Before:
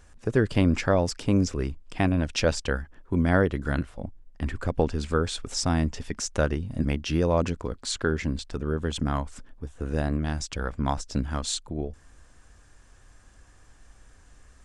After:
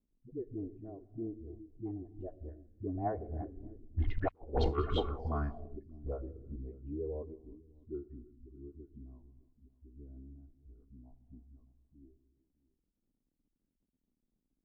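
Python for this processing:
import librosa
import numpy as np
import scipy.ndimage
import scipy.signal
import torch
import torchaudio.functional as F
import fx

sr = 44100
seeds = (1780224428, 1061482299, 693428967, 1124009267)

p1 = fx.bin_expand(x, sr, power=1.5)
p2 = fx.doppler_pass(p1, sr, speed_mps=35, closest_m=1.9, pass_at_s=4.36)
p3 = fx.low_shelf(p2, sr, hz=75.0, db=6.0)
p4 = p3 + 0.58 * np.pad(p3, (int(2.8 * sr / 1000.0), 0))[:len(p3)]
p5 = fx.dispersion(p4, sr, late='highs', ms=74.0, hz=380.0)
p6 = p5 + fx.echo_single(p5, sr, ms=611, db=-19.0, dry=0)
p7 = fx.rev_gated(p6, sr, seeds[0], gate_ms=380, shape='flat', drr_db=11.5)
p8 = fx.cheby_harmonics(p7, sr, harmonics=(5, 7), levels_db=(-38, -23), full_scale_db=-15.5)
p9 = fx.high_shelf(p8, sr, hz=2600.0, db=-11.0)
p10 = fx.over_compress(p9, sr, threshold_db=-45.0, ratio=-0.5)
p11 = fx.dmg_crackle(p10, sr, seeds[1], per_s=120.0, level_db=-66.0)
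p12 = fx.envelope_lowpass(p11, sr, base_hz=250.0, top_hz=4700.0, q=3.0, full_db=-36.5, direction='up')
y = p12 * librosa.db_to_amplitude(11.0)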